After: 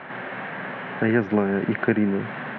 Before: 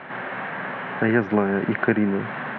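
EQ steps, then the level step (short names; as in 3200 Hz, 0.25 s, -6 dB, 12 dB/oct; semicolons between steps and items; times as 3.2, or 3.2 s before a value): dynamic EQ 1100 Hz, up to -4 dB, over -37 dBFS, Q 1; 0.0 dB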